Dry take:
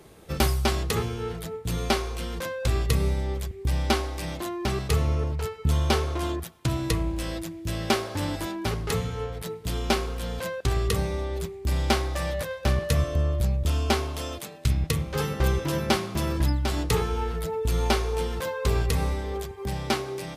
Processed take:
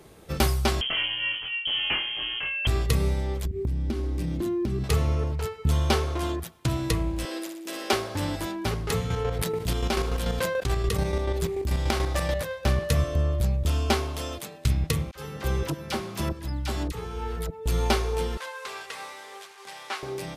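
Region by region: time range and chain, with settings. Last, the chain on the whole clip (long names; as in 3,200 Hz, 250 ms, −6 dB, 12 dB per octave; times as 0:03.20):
0:00.81–0:02.67: flutter between parallel walls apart 3.9 metres, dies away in 0.2 s + hard clipping −22.5 dBFS + voice inversion scrambler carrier 3,200 Hz
0:03.45–0:04.84: low shelf with overshoot 440 Hz +13 dB, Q 1.5 + downward compressor 10 to 1, threshold −24 dBFS + one half of a high-frequency compander decoder only
0:07.25–0:07.93: Butterworth high-pass 270 Hz + flutter between parallel walls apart 10 metres, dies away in 0.56 s
0:09.10–0:12.38: square-wave tremolo 6.9 Hz, depth 65%, duty 35% + envelope flattener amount 70%
0:15.11–0:17.66: shaped tremolo saw up 1.7 Hz, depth 85% + all-pass dispersion lows, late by 45 ms, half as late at 830 Hz
0:18.37–0:20.03: linear delta modulator 64 kbit/s, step −38.5 dBFS + high-pass filter 1,000 Hz + high-shelf EQ 5,400 Hz −6.5 dB
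whole clip: no processing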